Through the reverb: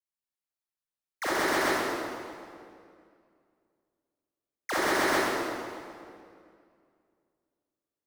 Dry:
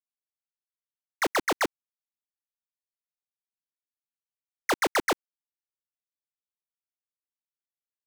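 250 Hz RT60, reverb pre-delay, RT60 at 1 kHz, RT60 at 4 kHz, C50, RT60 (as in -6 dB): 2.7 s, 31 ms, 2.2 s, 1.8 s, -5.5 dB, 2.3 s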